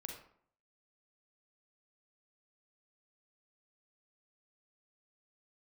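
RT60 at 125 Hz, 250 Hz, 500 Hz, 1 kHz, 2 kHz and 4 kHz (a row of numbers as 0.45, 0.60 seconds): 0.70, 0.65, 0.60, 0.60, 0.50, 0.35 seconds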